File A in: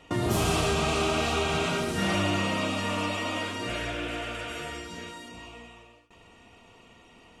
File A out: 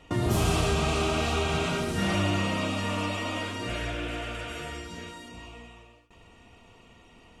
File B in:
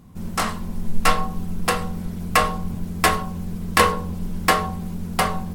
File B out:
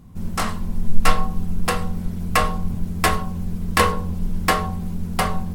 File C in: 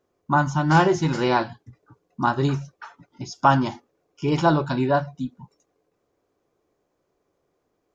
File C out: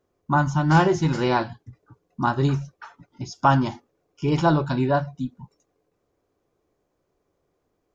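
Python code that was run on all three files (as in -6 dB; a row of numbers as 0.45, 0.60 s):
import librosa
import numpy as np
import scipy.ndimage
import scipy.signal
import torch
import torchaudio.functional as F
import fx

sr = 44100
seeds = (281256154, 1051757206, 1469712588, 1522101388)

y = fx.low_shelf(x, sr, hz=120.0, db=8.0)
y = y * 10.0 ** (-1.5 / 20.0)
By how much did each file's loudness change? -0.5, -0.5, -0.5 LU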